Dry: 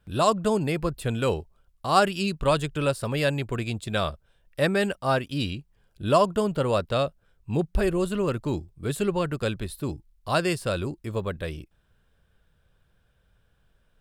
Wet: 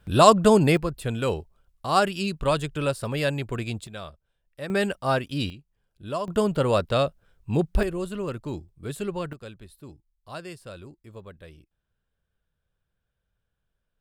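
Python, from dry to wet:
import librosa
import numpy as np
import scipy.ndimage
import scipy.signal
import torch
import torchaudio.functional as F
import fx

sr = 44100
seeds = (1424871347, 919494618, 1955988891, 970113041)

y = fx.gain(x, sr, db=fx.steps((0.0, 7.0), (0.77, -1.0), (3.87, -12.0), (4.7, 0.0), (5.5, -10.0), (6.28, 2.0), (7.83, -5.0), (9.33, -14.0)))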